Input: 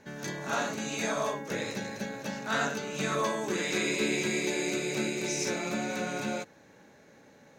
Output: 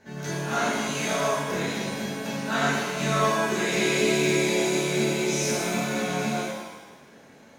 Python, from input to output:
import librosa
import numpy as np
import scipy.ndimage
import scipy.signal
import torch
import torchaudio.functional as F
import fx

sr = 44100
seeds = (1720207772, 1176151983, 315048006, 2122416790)

y = fx.rev_shimmer(x, sr, seeds[0], rt60_s=1.1, semitones=7, shimmer_db=-8, drr_db=-6.5)
y = y * librosa.db_to_amplitude(-2.5)